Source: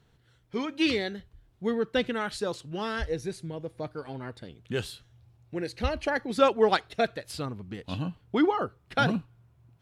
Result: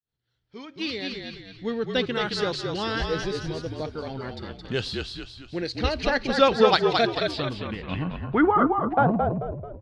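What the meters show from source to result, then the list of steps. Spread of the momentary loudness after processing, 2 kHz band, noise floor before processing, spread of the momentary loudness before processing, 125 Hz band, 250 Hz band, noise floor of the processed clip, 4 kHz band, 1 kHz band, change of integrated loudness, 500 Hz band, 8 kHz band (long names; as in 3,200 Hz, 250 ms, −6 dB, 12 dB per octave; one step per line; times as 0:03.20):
15 LU, +4.0 dB, −65 dBFS, 14 LU, +5.0 dB, +3.5 dB, −75 dBFS, +7.0 dB, +6.0 dB, +4.5 dB, +4.0 dB, +1.0 dB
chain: fade in at the beginning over 2.52 s
echo with shifted repeats 219 ms, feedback 44%, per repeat −43 Hz, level −4 dB
low-pass filter sweep 4,800 Hz → 620 Hz, 0:07.09–0:09.46
level +2.5 dB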